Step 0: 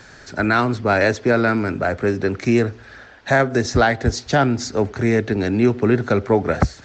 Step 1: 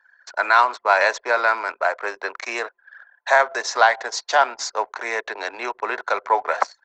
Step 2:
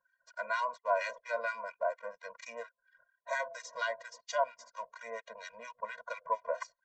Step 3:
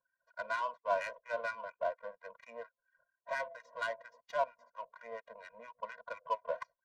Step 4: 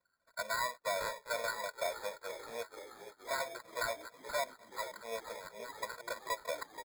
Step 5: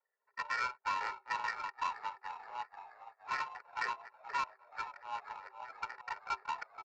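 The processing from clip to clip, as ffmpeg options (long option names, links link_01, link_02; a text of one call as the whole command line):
ffmpeg -i in.wav -af "highpass=frequency=620:width=0.5412,highpass=frequency=620:width=1.3066,anlmdn=1.58,equalizer=frequency=1000:width_type=o:width=0.3:gain=12,volume=1dB" out.wav
ffmpeg -i in.wav -filter_complex "[0:a]equalizer=frequency=160:width_type=o:width=0.67:gain=5,equalizer=frequency=1600:width_type=o:width=0.67:gain=-5,equalizer=frequency=4000:width_type=o:width=0.67:gain=-6,acrossover=split=1300[link_01][link_02];[link_01]aeval=exprs='val(0)*(1-1/2+1/2*cos(2*PI*4.3*n/s))':channel_layout=same[link_03];[link_02]aeval=exprs='val(0)*(1-1/2-1/2*cos(2*PI*4.3*n/s))':channel_layout=same[link_04];[link_03][link_04]amix=inputs=2:normalize=0,afftfilt=real='re*eq(mod(floor(b*sr/1024/230),2),0)':imag='im*eq(mod(floor(b*sr/1024/230),2),0)':win_size=1024:overlap=0.75,volume=-6dB" out.wav
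ffmpeg -i in.wav -af "adynamicsmooth=sensitivity=5:basefreq=1400,volume=-2dB" out.wav
ffmpeg -i in.wav -filter_complex "[0:a]alimiter=level_in=6.5dB:limit=-24dB:level=0:latency=1:release=127,volume=-6.5dB,acrusher=samples=15:mix=1:aa=0.000001,asplit=2[link_01][link_02];[link_02]asplit=8[link_03][link_04][link_05][link_06][link_07][link_08][link_09][link_10];[link_03]adelay=477,afreqshift=-53,volume=-12dB[link_11];[link_04]adelay=954,afreqshift=-106,volume=-15.7dB[link_12];[link_05]adelay=1431,afreqshift=-159,volume=-19.5dB[link_13];[link_06]adelay=1908,afreqshift=-212,volume=-23.2dB[link_14];[link_07]adelay=2385,afreqshift=-265,volume=-27dB[link_15];[link_08]adelay=2862,afreqshift=-318,volume=-30.7dB[link_16];[link_09]adelay=3339,afreqshift=-371,volume=-34.5dB[link_17];[link_10]adelay=3816,afreqshift=-424,volume=-38.2dB[link_18];[link_11][link_12][link_13][link_14][link_15][link_16][link_17][link_18]amix=inputs=8:normalize=0[link_19];[link_01][link_19]amix=inputs=2:normalize=0,volume=4dB" out.wav
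ffmpeg -i in.wav -af "afreqshift=380,adynamicsmooth=sensitivity=5.5:basefreq=1200,aresample=16000,aresample=44100,volume=1dB" out.wav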